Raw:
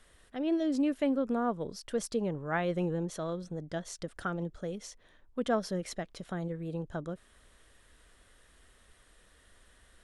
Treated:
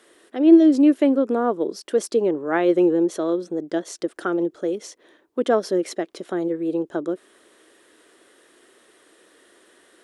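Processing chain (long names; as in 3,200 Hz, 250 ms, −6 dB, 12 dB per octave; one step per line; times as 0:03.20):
high-pass with resonance 340 Hz, resonance Q 4.1
level +7 dB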